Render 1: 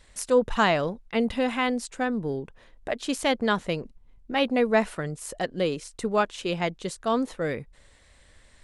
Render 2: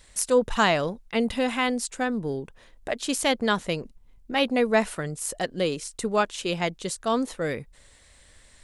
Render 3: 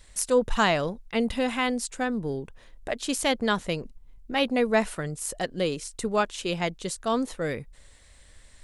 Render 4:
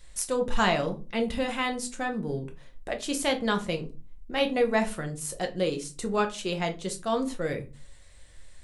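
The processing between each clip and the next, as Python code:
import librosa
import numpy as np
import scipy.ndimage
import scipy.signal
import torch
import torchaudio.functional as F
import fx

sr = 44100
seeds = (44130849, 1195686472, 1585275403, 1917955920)

y1 = fx.high_shelf(x, sr, hz=4800.0, db=9.0)
y2 = fx.low_shelf(y1, sr, hz=75.0, db=7.0)
y2 = y2 * 10.0 ** (-1.5 / 20.0)
y3 = fx.room_shoebox(y2, sr, seeds[0], volume_m3=150.0, walls='furnished', distance_m=0.91)
y3 = y3 * 10.0 ** (-3.0 / 20.0)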